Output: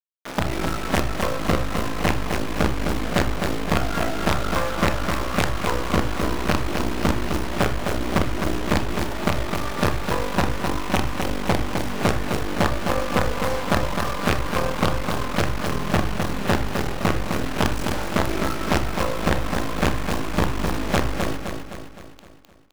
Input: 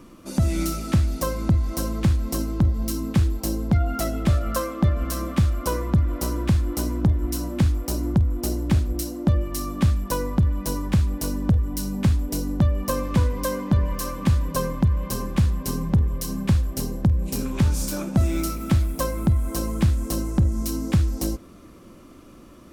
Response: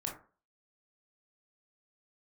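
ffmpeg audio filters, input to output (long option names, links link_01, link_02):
-filter_complex "[0:a]bass=frequency=250:gain=2,treble=frequency=4000:gain=-14,acrusher=bits=3:dc=4:mix=0:aa=0.000001,alimiter=limit=-10dB:level=0:latency=1:release=32,highshelf=frequency=6900:gain=5,asplit=2[link_01][link_02];[link_02]highpass=frequency=720:poles=1,volume=12dB,asoftclip=type=tanh:threshold=-1.5dB[link_03];[link_01][link_03]amix=inputs=2:normalize=0,lowpass=frequency=2600:poles=1,volume=-6dB,aecho=1:1:258|516|774|1032|1290|1548:0.531|0.271|0.138|0.0704|0.0359|0.0183,asplit=2[link_04][link_05];[1:a]atrim=start_sample=2205[link_06];[link_05][link_06]afir=irnorm=-1:irlink=0,volume=-5dB[link_07];[link_04][link_07]amix=inputs=2:normalize=0,volume=-2dB"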